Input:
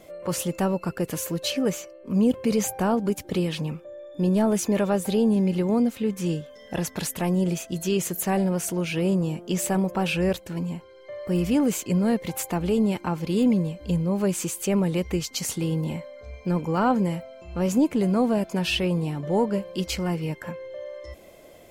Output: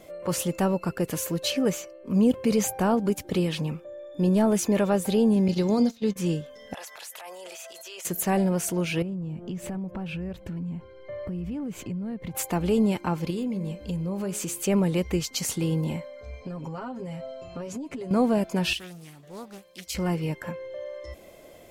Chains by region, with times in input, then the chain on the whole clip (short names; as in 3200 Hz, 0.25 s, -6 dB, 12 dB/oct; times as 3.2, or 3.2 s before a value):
5.48–6.16 de-hum 115.2 Hz, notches 28 + gate -28 dBFS, range -18 dB + band shelf 4900 Hz +12 dB 1.1 oct
6.74–8.05 HPF 620 Hz 24 dB/oct + compressor 4:1, threshold -37 dBFS + transient shaper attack -10 dB, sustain +7 dB
9.02–12.35 tone controls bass +11 dB, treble -11 dB + compressor, threshold -31 dBFS
13.3–14.63 de-hum 69.55 Hz, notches 38 + compressor 5:1, threshold -27 dBFS
16.41–18.11 LPF 8400 Hz + comb 7.4 ms, depth 94% + compressor 20:1, threshold -31 dBFS
18.73–19.95 pre-emphasis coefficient 0.9 + Doppler distortion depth 0.39 ms
whole clip: dry